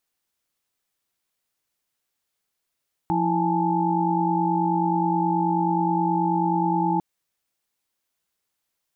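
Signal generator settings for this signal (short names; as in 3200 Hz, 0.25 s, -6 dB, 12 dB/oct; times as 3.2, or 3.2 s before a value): chord F3/E4/G#5/A5 sine, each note -25 dBFS 3.90 s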